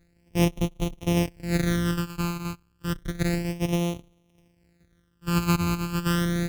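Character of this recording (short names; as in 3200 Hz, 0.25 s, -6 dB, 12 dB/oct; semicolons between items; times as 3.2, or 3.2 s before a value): a buzz of ramps at a fixed pitch in blocks of 256 samples; phasing stages 12, 0.31 Hz, lowest notch 590–1600 Hz; noise-modulated level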